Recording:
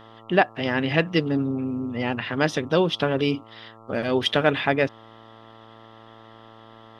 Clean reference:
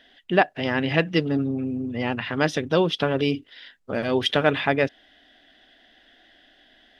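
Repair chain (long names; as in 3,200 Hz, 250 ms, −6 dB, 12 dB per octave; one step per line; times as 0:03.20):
hum removal 112.1 Hz, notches 12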